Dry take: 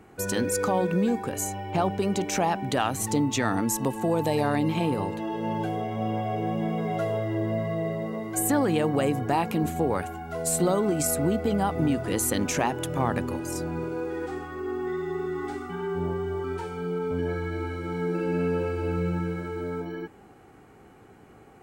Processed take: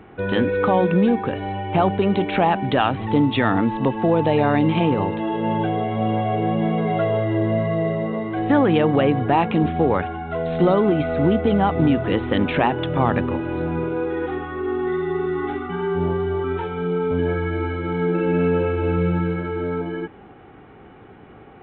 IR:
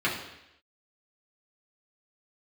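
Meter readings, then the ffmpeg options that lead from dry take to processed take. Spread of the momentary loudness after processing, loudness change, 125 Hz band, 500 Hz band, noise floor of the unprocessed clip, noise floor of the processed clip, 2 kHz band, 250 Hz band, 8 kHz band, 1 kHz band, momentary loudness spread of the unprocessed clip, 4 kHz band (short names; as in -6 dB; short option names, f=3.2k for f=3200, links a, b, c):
8 LU, +6.5 dB, +7.0 dB, +7.0 dB, -52 dBFS, -45 dBFS, +7.0 dB, +7.0 dB, under -40 dB, +7.0 dB, 8 LU, +4.5 dB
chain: -af "acontrast=88" -ar 8000 -c:a pcm_alaw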